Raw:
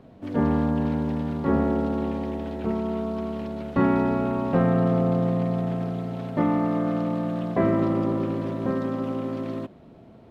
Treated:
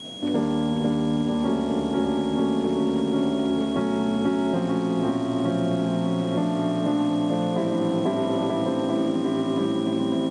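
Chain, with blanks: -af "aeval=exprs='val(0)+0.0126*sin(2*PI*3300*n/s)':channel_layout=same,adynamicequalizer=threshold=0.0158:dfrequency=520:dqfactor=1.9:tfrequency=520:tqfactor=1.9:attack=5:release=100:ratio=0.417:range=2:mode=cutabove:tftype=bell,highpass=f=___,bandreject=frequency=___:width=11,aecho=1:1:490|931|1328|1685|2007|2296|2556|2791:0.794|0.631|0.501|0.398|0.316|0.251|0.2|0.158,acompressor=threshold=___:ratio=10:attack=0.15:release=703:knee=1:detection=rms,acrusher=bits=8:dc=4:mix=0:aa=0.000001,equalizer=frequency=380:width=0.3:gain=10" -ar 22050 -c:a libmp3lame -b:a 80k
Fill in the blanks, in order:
130, 1300, -24dB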